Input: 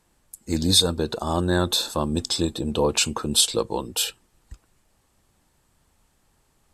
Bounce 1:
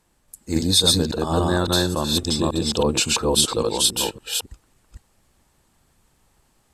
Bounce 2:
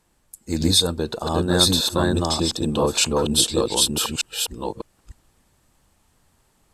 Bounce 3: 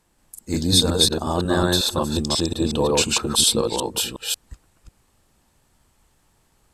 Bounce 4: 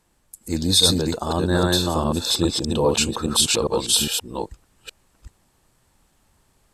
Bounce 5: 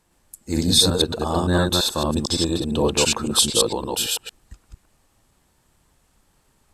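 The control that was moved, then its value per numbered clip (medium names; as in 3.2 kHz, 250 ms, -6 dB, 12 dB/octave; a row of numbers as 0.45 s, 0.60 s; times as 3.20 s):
chunks repeated in reverse, time: 279 ms, 602 ms, 181 ms, 408 ms, 113 ms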